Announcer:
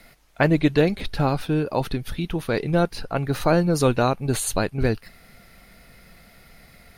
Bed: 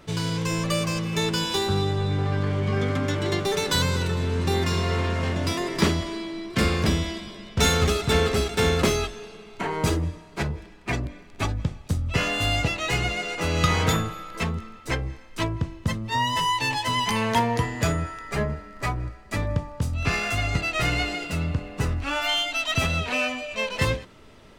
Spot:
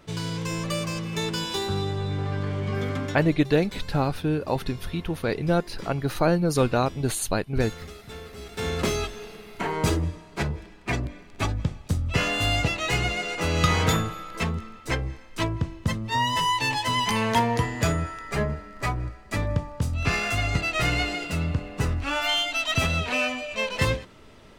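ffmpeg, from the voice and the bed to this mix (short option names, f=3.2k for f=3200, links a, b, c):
-filter_complex "[0:a]adelay=2750,volume=-2.5dB[a];[1:a]volume=16dB,afade=t=out:st=3:d=0.33:silence=0.158489,afade=t=in:st=8.36:d=0.85:silence=0.105925[b];[a][b]amix=inputs=2:normalize=0"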